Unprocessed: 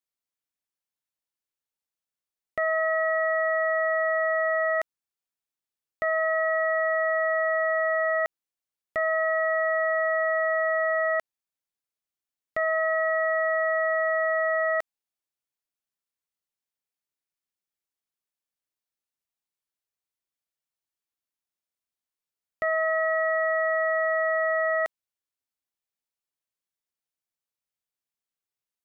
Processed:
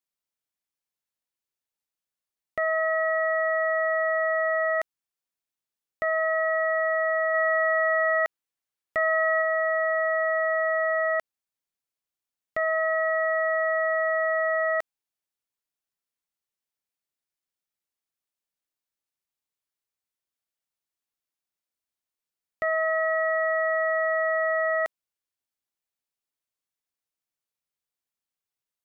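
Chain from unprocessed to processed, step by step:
0:07.34–0:09.42: parametric band 1,700 Hz +3 dB 1.7 octaves

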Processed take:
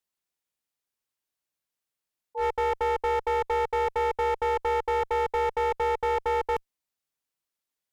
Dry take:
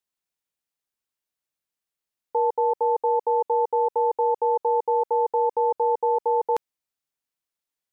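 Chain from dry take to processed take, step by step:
volume swells 103 ms
asymmetric clip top −26 dBFS, bottom −20 dBFS

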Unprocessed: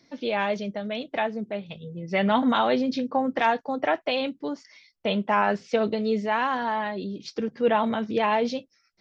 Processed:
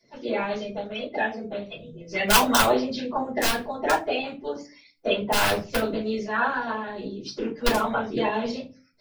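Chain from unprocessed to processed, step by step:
spectral magnitudes quantised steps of 30 dB
wrap-around overflow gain 12 dB
0:01.98–0:02.71: high-shelf EQ 3,300 Hz → 4,600 Hz +9 dB
rectangular room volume 160 cubic metres, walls furnished, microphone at 5.2 metres
harmonic and percussive parts rebalanced harmonic −12 dB
level −4.5 dB

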